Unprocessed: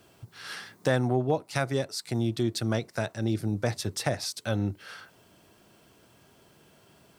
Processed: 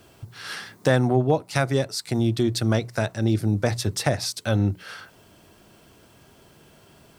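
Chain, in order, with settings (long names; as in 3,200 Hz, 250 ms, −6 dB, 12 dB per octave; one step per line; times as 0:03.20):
low-shelf EQ 72 Hz +10 dB
mains-hum notches 60/120/180 Hz
level +5 dB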